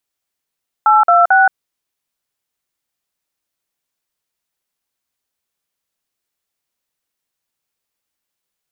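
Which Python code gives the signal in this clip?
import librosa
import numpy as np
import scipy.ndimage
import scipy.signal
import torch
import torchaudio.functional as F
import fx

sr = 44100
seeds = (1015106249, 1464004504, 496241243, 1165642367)

y = fx.dtmf(sr, digits='826', tone_ms=174, gap_ms=48, level_db=-9.5)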